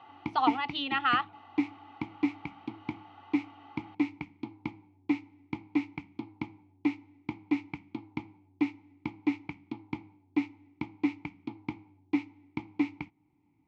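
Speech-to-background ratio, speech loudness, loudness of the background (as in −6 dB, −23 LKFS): 7.0 dB, −29.5 LKFS, −36.5 LKFS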